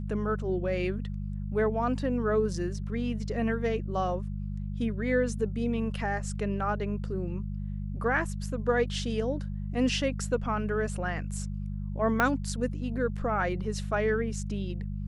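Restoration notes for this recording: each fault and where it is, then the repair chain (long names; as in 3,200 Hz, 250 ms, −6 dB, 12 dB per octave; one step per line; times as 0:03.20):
mains hum 50 Hz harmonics 4 −34 dBFS
0:12.20: click −11 dBFS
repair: click removal
hum removal 50 Hz, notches 4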